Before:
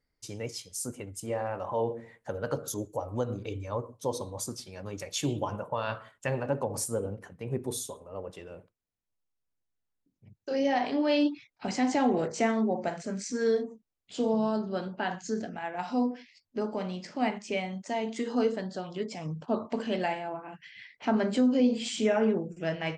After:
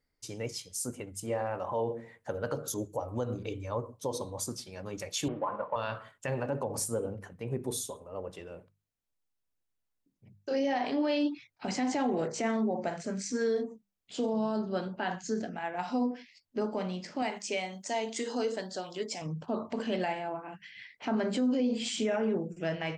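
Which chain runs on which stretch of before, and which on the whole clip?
5.28–5.76 CVSD 32 kbps + speaker cabinet 260–2000 Hz, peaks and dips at 380 Hz -5 dB, 560 Hz +4 dB, 1100 Hz +9 dB
17.22–19.22 tone controls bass -10 dB, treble +9 dB + notch 1200 Hz, Q 18
whole clip: notches 50/100/150/200 Hz; limiter -22 dBFS

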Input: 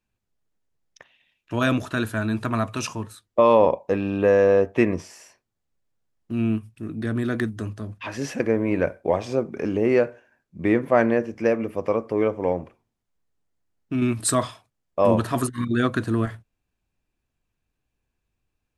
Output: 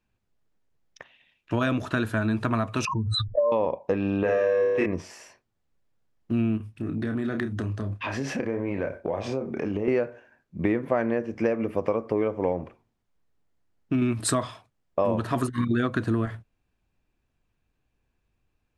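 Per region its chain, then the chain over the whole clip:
2.85–3.52 spectral contrast raised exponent 2.9 + LPF 6600 Hz 24 dB/oct + backwards sustainer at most 50 dB/s
4.23–4.86 low shelf 400 Hz -8 dB + flutter echo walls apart 4.9 m, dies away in 1 s
6.57–9.88 high shelf 7700 Hz -3 dB + doubler 30 ms -7 dB + compressor 4:1, threshold -29 dBFS
whole clip: high shelf 6200 Hz -11 dB; compressor 6:1, threshold -25 dBFS; gain +4 dB

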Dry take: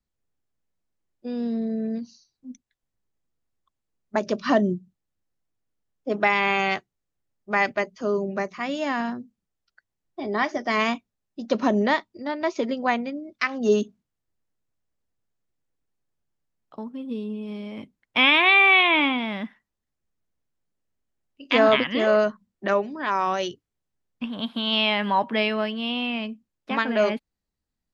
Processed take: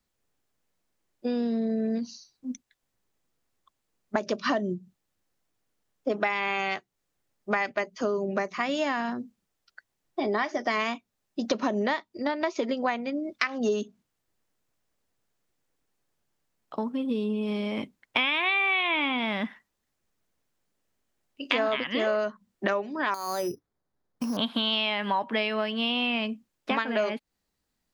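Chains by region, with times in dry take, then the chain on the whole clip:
23.14–24.37 LPF 1600 Hz + compressor 12:1, threshold -29 dBFS + careless resampling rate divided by 8×, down filtered, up hold
whole clip: low shelf 190 Hz -9 dB; compressor 6:1, threshold -33 dBFS; gain +8.5 dB

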